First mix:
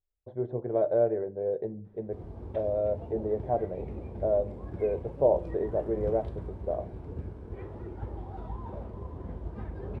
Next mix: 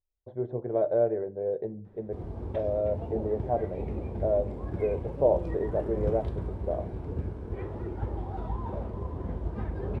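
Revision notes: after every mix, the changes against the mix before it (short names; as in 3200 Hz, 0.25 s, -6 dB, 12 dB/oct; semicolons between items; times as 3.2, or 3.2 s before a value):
background +5.0 dB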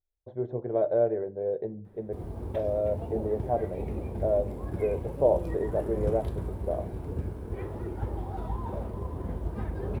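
master: remove air absorption 93 m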